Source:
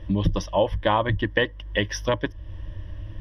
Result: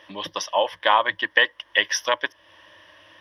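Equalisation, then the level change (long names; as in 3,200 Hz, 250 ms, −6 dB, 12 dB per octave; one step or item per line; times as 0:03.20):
high-pass filter 920 Hz 12 dB per octave
+7.5 dB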